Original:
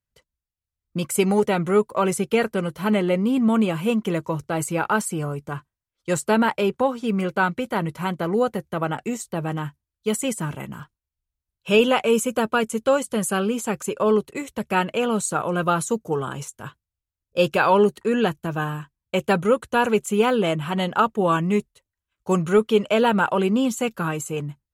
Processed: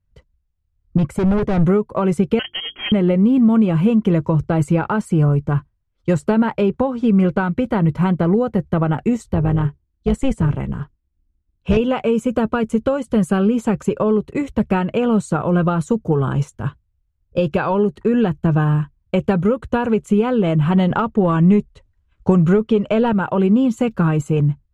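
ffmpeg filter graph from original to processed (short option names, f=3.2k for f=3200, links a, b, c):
-filter_complex "[0:a]asettb=1/sr,asplit=3[a][b][c];[a]atrim=end=0.974[d];[b]atrim=start=0.97:end=1.65,asetpts=PTS-STARTPTS,afade=t=in:d=0.004:c=qsin,afade=t=out:st=0.676:d=0.004:c=qsin,highshelf=f=2.5k:g=-8,asoftclip=type=hard:threshold=-26dB[e];[c]atrim=start=1.646[f];[d][e]acrossfade=d=0.004:c1=hsin:c2=qsin[g];[g][f]acrossfade=d=0.004:c1=qsin:c2=hsin,asettb=1/sr,asplit=3[h][i][j];[h]atrim=end=2.394[k];[i]atrim=start=2.39:end=2.92,asetpts=PTS-STARTPTS,afade=t=in:d=0.004:c=qsin,afade=t=out:st=0.526:d=0.004:c=qsin,lowpass=f=2.9k:t=q:w=0.5098,lowpass=f=2.9k:t=q:w=0.6013,lowpass=f=2.9k:t=q:w=0.9,lowpass=f=2.9k:t=q:w=2.563,afreqshift=-3400,bandreject=f=50:t=h:w=6,bandreject=f=100:t=h:w=6,bandreject=f=150:t=h:w=6,bandreject=f=200:t=h:w=6,bandreject=f=250:t=h:w=6,bandreject=f=300:t=h:w=6,bandreject=f=350:t=h:w=6,bandreject=f=400:t=h:w=6[l];[j]atrim=start=2.916[m];[k][l]acrossfade=d=0.004:c1=hsin:c2=qsin[n];[n][m]acrossfade=d=0.004:c1=qsin:c2=hsin,asettb=1/sr,asplit=3[o][p][q];[o]atrim=end=9.334[r];[p]atrim=start=9.33:end=11.77,asetpts=PTS-STARTPTS,afade=t=in:d=0.004:c=qsin,afade=t=out:st=2.436:d=0.004:c=qsin,lowpass=10k,asoftclip=type=hard:threshold=-15.5dB,tremolo=f=270:d=0.621[s];[q]atrim=start=11.766[t];[r][s]acrossfade=d=0.004:c1=hsin:c2=qsin[u];[u][t]acrossfade=d=0.004:c1=qsin:c2=hsin,asettb=1/sr,asplit=3[v][w][x];[v]atrim=end=20.904[y];[w]atrim=start=20.9:end=23.13,asetpts=PTS-STARTPTS,afade=t=in:d=0.004:c=qsin,afade=t=out:st=2.226:d=0.004:c=qsin,lowpass=f=9.9k:w=0.5412,lowpass=f=9.9k:w=1.3066,acontrast=44[z];[x]atrim=start=23.126[aa];[y][z]acrossfade=d=0.004:c1=hsin:c2=qsin[ab];[ab][aa]acrossfade=d=0.004:c1=qsin:c2=hsin,acompressor=threshold=-23dB:ratio=6,aemphasis=mode=reproduction:type=riaa,volume=5dB"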